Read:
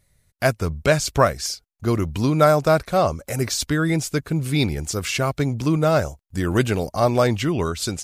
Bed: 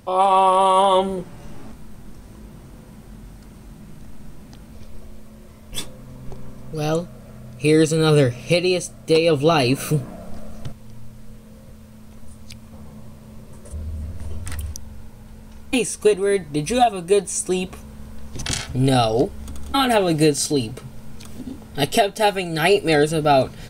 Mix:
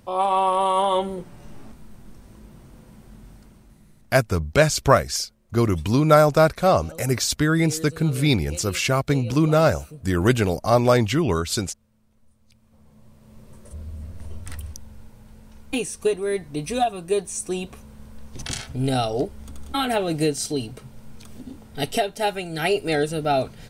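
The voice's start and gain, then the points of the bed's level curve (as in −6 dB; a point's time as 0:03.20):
3.70 s, +1.0 dB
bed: 0:03.36 −5 dB
0:04.32 −21.5 dB
0:12.39 −21.5 dB
0:13.46 −5.5 dB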